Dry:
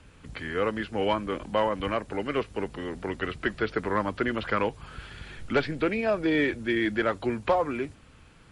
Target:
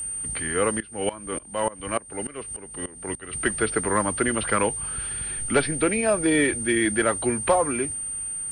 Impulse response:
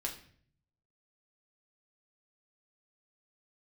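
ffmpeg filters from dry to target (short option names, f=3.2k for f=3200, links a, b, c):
-filter_complex "[0:a]aeval=exprs='val(0)+0.0251*sin(2*PI*8800*n/s)':c=same,asettb=1/sr,asplit=3[a][b][c];[a]atrim=end=0.804[d];[b]atrim=start=0.8:end=3.33,asetpts=PTS-STARTPTS,afade=t=in:d=0.004:c=qsin,afade=t=out:st=2.526:d=0.004:c=qsin,aeval=exprs='val(0)*pow(10,-20*if(lt(mod(-3.4*n/s,1),2*abs(-3.4)/1000),1-mod(-3.4*n/s,1)/(2*abs(-3.4)/1000),(mod(-3.4*n/s,1)-2*abs(-3.4)/1000)/(1-2*abs(-3.4)/1000))/20)':c=same[e];[c]atrim=start=3.326[f];[d][e]acrossfade=d=0.004:c1=hsin:c2=qsin[g];[g][f]acrossfade=d=0.004:c1=qsin:c2=hsin,volume=3.5dB"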